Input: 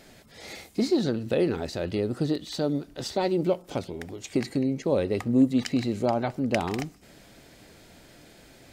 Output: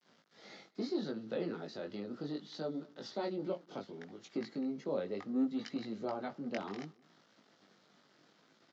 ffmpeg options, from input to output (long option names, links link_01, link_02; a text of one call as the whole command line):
ffmpeg -i in.wav -filter_complex "[0:a]adynamicequalizer=threshold=0.0178:dfrequency=780:dqfactor=0.92:tfrequency=780:tqfactor=0.92:attack=5:release=100:ratio=0.375:range=1.5:mode=cutabove:tftype=bell,aresample=16000,aeval=exprs='val(0)*gte(abs(val(0)),0.00376)':channel_layout=same,aresample=44100,flanger=delay=18:depth=2.8:speed=0.69,acrossover=split=230|1900[link_01][link_02][link_03];[link_01]asoftclip=type=tanh:threshold=-37.5dB[link_04];[link_04][link_02][link_03]amix=inputs=3:normalize=0,highpass=frequency=150:width=0.5412,highpass=frequency=150:width=1.3066,equalizer=frequency=200:width_type=q:width=4:gain=4,equalizer=frequency=1300:width_type=q:width=4:gain=5,equalizer=frequency=2500:width_type=q:width=4:gain=-6,lowpass=frequency=5500:width=0.5412,lowpass=frequency=5500:width=1.3066,asplit=2[link_05][link_06];[link_06]adelay=204.1,volume=-25dB,highshelf=frequency=4000:gain=-4.59[link_07];[link_05][link_07]amix=inputs=2:normalize=0,volume=-8.5dB" out.wav